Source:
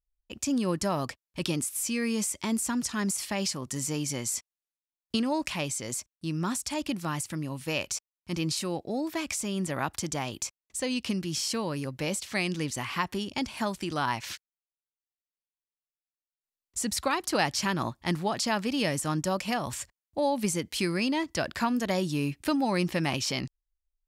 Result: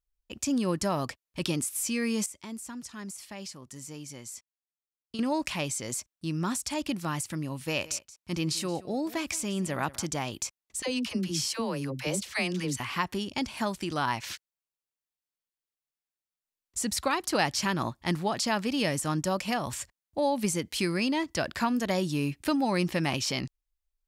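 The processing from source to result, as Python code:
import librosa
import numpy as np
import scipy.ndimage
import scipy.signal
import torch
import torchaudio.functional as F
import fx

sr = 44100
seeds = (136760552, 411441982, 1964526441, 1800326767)

y = fx.echo_single(x, sr, ms=176, db=-18.5, at=(7.76, 10.06), fade=0.02)
y = fx.dispersion(y, sr, late='lows', ms=68.0, hz=540.0, at=(10.82, 12.8))
y = fx.edit(y, sr, fx.clip_gain(start_s=2.26, length_s=2.93, db=-11.0), tone=tone)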